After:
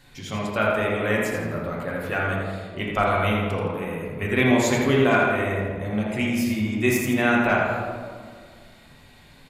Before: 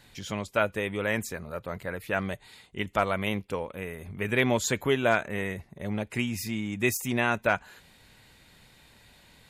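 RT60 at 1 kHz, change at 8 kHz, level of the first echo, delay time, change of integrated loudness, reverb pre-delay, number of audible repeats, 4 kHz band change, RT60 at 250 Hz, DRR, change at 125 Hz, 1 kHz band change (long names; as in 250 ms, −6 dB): 1.8 s, +1.0 dB, −6.0 dB, 83 ms, +6.0 dB, 3 ms, 1, +3.5 dB, 2.2 s, −4.5 dB, +7.5 dB, +6.5 dB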